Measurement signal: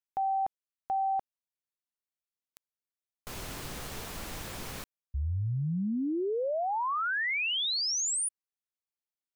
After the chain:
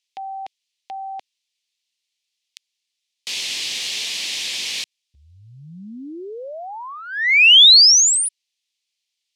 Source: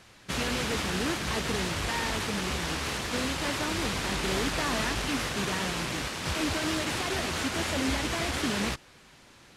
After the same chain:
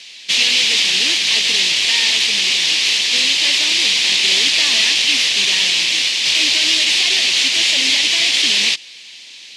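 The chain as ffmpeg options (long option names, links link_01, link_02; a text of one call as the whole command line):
ffmpeg -i in.wav -af "aexciter=amount=11:drive=9.2:freq=2200,highpass=230,lowpass=4000,volume=-1.5dB" out.wav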